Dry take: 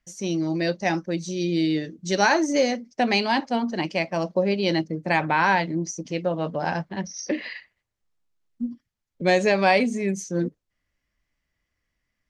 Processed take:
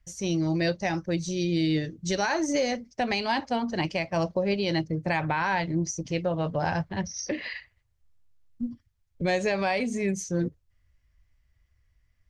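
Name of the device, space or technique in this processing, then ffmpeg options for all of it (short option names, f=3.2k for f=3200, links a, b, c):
car stereo with a boomy subwoofer: -af "lowshelf=f=140:t=q:w=1.5:g=13.5,alimiter=limit=-16.5dB:level=0:latency=1:release=177"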